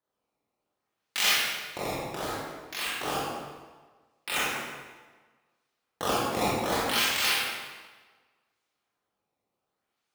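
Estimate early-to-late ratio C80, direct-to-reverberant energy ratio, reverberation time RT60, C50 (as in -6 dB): 0.5 dB, -7.5 dB, 1.4 s, -2.5 dB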